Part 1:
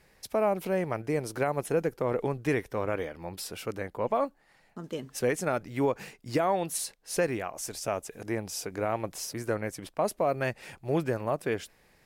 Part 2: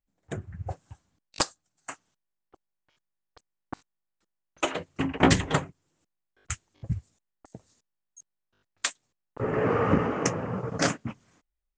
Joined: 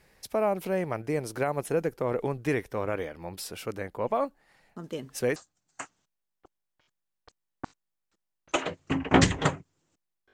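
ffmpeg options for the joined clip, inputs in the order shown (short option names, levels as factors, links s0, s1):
-filter_complex "[0:a]apad=whole_dur=10.33,atrim=end=10.33,atrim=end=5.362[s0];[1:a]atrim=start=1.448:end=6.42[s1];[s0][s1]acrossfade=d=0.004:c1=hsin:c2=hsin"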